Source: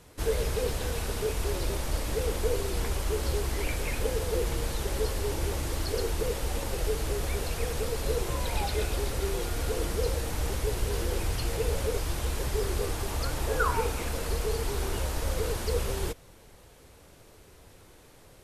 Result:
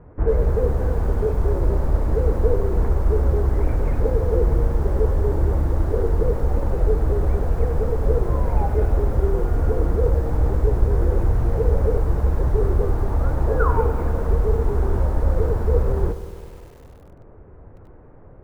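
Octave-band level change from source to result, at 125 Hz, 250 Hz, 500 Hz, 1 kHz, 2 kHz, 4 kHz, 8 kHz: +12.0 dB, +9.0 dB, +8.0 dB, +5.0 dB, -2.5 dB, under -15 dB, under -15 dB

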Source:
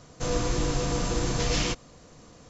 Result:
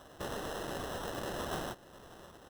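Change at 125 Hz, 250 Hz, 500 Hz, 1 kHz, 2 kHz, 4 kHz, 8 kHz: -17.0 dB, -12.5 dB, -9.0 dB, -6.0 dB, -8.0 dB, -12.5 dB, n/a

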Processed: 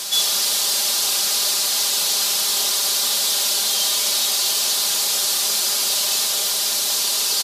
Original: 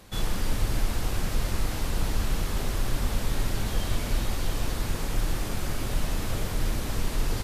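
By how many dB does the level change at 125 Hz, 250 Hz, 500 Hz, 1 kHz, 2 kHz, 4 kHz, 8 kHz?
under -20 dB, -10.0 dB, +1.5 dB, +6.0 dB, +7.5 dB, +21.0 dB, +21.5 dB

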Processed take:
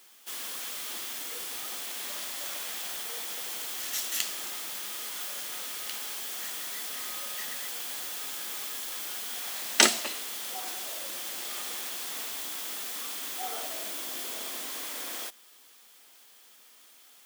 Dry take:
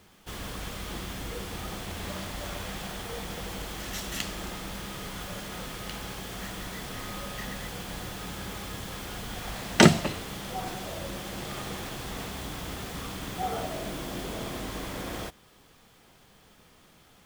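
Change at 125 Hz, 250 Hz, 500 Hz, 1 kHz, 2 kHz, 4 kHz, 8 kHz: under -30 dB, -14.5 dB, -9.0 dB, -5.0 dB, -1.0 dB, +2.5 dB, +6.5 dB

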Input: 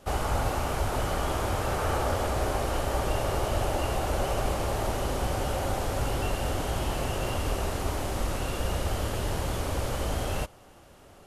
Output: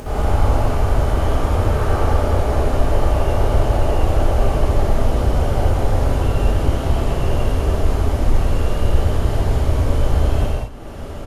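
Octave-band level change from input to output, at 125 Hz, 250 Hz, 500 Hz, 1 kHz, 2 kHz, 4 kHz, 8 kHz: +13.0, +10.0, +8.0, +6.0, +4.0, +2.5, -0.5 dB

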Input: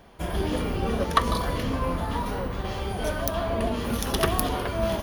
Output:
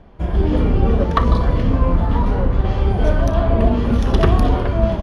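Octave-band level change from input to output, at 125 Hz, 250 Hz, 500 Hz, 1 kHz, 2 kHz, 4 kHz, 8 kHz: +13.5 dB, +9.5 dB, +7.0 dB, +4.5 dB, +2.0 dB, -1.5 dB, n/a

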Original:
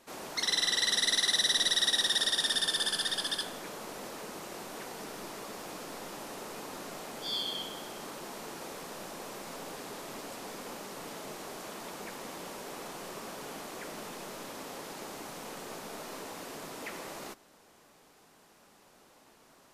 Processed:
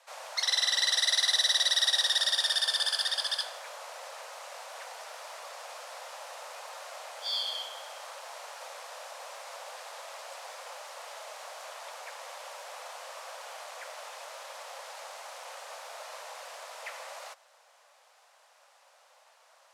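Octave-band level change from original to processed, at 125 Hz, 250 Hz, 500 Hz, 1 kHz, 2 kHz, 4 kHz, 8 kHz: under -40 dB, under -40 dB, -2.5 dB, +1.0 dB, +1.0 dB, +2.0 dB, 0.0 dB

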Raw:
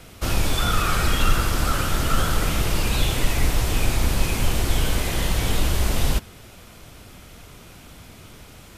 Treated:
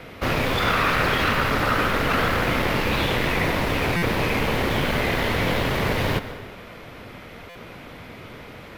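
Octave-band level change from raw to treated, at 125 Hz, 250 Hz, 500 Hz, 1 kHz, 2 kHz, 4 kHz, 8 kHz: -2.0, +3.5, +6.5, +4.5, +6.5, 0.0, -10.0 dB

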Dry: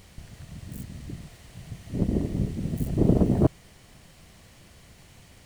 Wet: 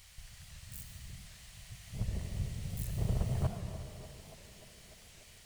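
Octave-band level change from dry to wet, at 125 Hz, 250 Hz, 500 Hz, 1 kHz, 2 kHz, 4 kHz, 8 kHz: -9.0 dB, -19.0 dB, -17.0 dB, -9.5 dB, -3.5 dB, n/a, +0.5 dB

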